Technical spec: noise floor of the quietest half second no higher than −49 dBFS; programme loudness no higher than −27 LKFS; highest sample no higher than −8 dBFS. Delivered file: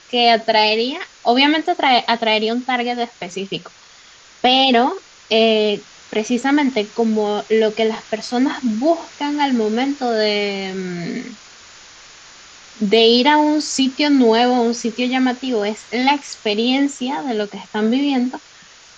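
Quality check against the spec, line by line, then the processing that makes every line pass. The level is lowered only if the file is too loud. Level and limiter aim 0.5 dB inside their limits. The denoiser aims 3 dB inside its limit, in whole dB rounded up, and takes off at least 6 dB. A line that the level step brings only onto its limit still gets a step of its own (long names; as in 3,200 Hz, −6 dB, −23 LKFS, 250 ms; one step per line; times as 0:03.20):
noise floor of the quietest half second −45 dBFS: out of spec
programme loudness −17.5 LKFS: out of spec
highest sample −2.0 dBFS: out of spec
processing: level −10 dB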